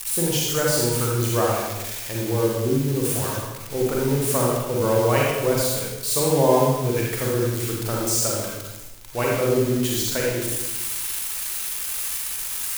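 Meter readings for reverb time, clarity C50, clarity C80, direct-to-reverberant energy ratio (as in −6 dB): 1.0 s, −1.5 dB, 2.0 dB, −4.0 dB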